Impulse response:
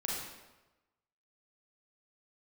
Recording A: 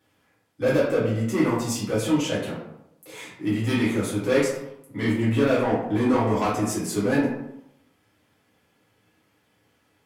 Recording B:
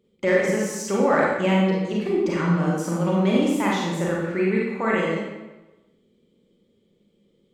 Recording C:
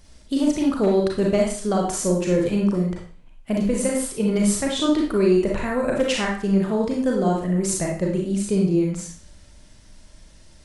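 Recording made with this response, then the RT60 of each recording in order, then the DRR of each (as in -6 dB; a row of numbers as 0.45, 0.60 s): B; 0.80, 1.1, 0.45 s; -9.0, -4.5, -1.5 dB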